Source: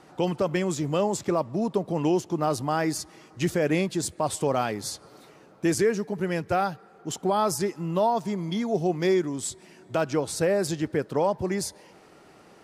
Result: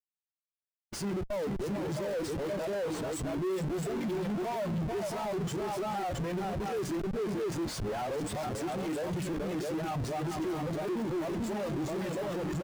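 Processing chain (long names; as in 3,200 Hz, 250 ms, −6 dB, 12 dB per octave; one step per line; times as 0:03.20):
played backwards from end to start
in parallel at −3 dB: downward compressor 6 to 1, threshold −35 dBFS, peak gain reduction 15.5 dB
on the sum: multi-tap delay 74/438/533/666 ms −12.5/−7.5/−16.5/−3.5 dB
noise that follows the level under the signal 13 dB
reverb reduction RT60 0.59 s
mains-hum notches 60/120/180/240/300 Hz
comparator with hysteresis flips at −34 dBFS
every bin expanded away from the loudest bin 1.5 to 1
level −8.5 dB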